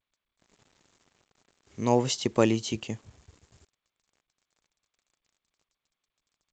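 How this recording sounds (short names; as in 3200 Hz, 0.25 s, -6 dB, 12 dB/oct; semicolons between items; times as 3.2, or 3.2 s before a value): a quantiser's noise floor 10-bit, dither none; G.722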